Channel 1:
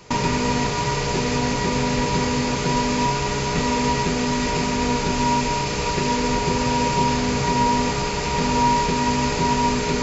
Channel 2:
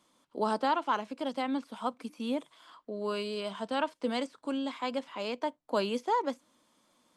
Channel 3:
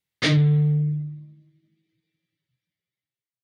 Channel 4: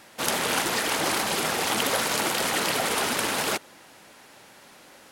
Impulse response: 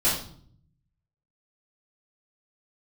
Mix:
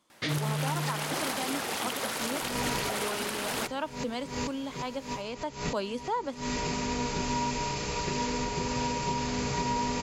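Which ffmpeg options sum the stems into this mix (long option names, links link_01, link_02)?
-filter_complex "[0:a]highshelf=frequency=6000:gain=4.5,adelay=2100,volume=-9.5dB[link_01];[1:a]volume=-2.5dB,asplit=2[link_02][link_03];[2:a]volume=-8.5dB[link_04];[3:a]adelay=100,volume=-6dB[link_05];[link_03]apad=whole_len=534784[link_06];[link_01][link_06]sidechaincompress=threshold=-51dB:ratio=12:attack=16:release=115[link_07];[link_07][link_02][link_04][link_05]amix=inputs=4:normalize=0,alimiter=limit=-19.5dB:level=0:latency=1:release=260"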